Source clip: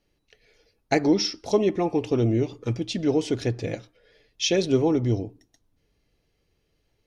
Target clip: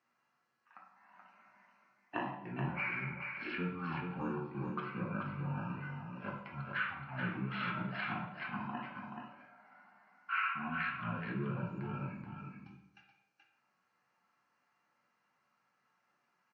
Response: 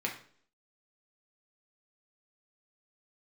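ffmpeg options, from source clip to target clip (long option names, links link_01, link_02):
-filter_complex "[0:a]highpass=1100,acompressor=threshold=-35dB:ratio=5,aecho=1:1:183:0.531[link_01];[1:a]atrim=start_sample=2205,asetrate=66150,aresample=44100[link_02];[link_01][link_02]afir=irnorm=-1:irlink=0,asetrate=18846,aresample=44100"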